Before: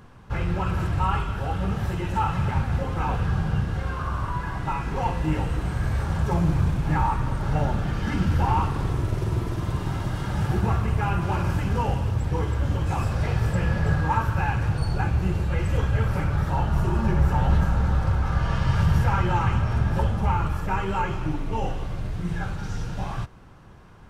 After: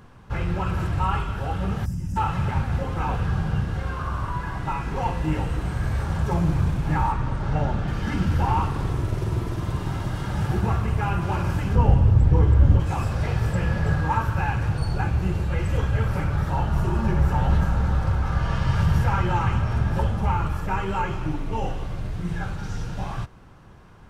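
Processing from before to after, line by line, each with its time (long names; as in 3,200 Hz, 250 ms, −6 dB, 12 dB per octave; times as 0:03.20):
0:01.85–0:02.16: gain on a spectral selection 290–4,700 Hz −20 dB
0:07.12–0:07.88: high-frequency loss of the air 53 metres
0:11.75–0:12.80: spectral tilt −2.5 dB per octave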